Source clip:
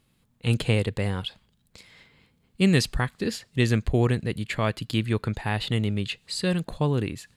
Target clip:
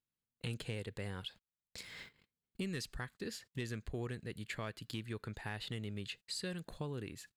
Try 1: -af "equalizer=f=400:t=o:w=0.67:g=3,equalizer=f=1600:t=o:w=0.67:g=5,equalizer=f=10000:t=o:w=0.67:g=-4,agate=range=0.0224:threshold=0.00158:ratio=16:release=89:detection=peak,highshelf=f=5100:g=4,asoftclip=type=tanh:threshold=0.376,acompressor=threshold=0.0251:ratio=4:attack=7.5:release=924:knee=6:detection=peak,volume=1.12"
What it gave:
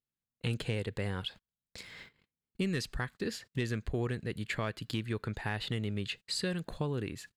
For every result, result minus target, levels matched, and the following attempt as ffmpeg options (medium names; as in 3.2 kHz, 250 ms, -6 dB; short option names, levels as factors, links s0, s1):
compression: peak gain reduction -7.5 dB; 8 kHz band -3.5 dB
-af "equalizer=f=400:t=o:w=0.67:g=3,equalizer=f=1600:t=o:w=0.67:g=5,equalizer=f=10000:t=o:w=0.67:g=-4,agate=range=0.0224:threshold=0.00158:ratio=16:release=89:detection=peak,highshelf=f=5100:g=4,asoftclip=type=tanh:threshold=0.376,acompressor=threshold=0.00794:ratio=4:attack=7.5:release=924:knee=6:detection=peak,volume=1.12"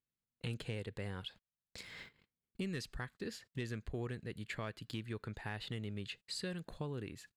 8 kHz band -3.0 dB
-af "equalizer=f=400:t=o:w=0.67:g=3,equalizer=f=1600:t=o:w=0.67:g=5,equalizer=f=10000:t=o:w=0.67:g=-4,agate=range=0.0224:threshold=0.00158:ratio=16:release=89:detection=peak,highshelf=f=5100:g=10.5,asoftclip=type=tanh:threshold=0.376,acompressor=threshold=0.00794:ratio=4:attack=7.5:release=924:knee=6:detection=peak,volume=1.12"